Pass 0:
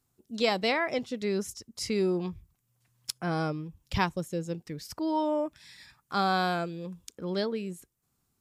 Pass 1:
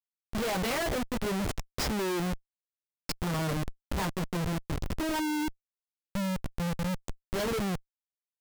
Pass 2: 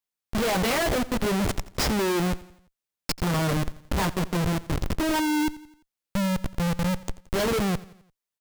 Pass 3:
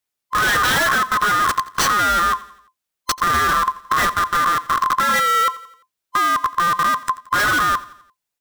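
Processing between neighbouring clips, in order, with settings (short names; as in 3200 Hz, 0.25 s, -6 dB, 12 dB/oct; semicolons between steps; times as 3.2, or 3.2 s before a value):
chorus voices 4, 0.6 Hz, delay 14 ms, depth 3.4 ms; spectral delete 5.2–7.32, 340–6000 Hz; Schmitt trigger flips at -37 dBFS; gain +5 dB
feedback echo 86 ms, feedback 49%, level -19 dB; gain +6 dB
band-swap scrambler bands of 1000 Hz; gain +7 dB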